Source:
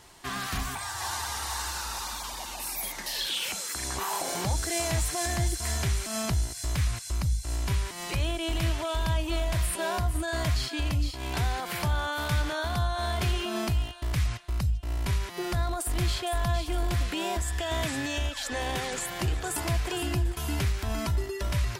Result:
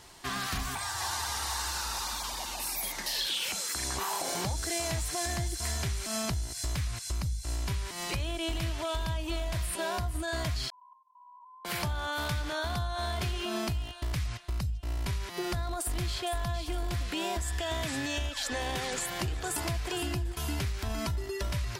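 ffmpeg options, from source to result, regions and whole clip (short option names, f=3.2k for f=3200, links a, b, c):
-filter_complex "[0:a]asettb=1/sr,asplit=3[a][b][c];[a]atrim=end=10.704[d];[b]atrim=start=10.7:end=11.65,asetpts=PTS-STARTPTS,afade=t=in:d=0.004:c=qsin,afade=t=out:st=0.946:d=0.004:c=qsin,asuperpass=centerf=1000:order=20:qfactor=7.6,acompressor=threshold=-55dB:ratio=2.5:attack=3.2:release=140:knee=1:detection=peak[e];[c]atrim=start=11.646[f];[d][e]acrossfade=d=0.004:c1=hsin:c2=qsin[g];[g][f]acrossfade=d=0.004:c1=qsin:c2=hsin,acompressor=threshold=-29dB:ratio=6,equalizer=f=4.7k:w=1.5:g=2.5"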